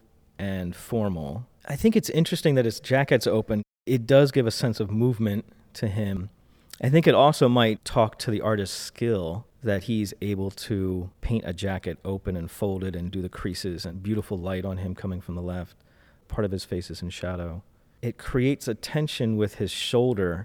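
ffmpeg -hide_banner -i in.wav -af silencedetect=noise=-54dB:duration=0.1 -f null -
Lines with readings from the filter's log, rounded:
silence_start: 3.63
silence_end: 3.87 | silence_duration: 0.24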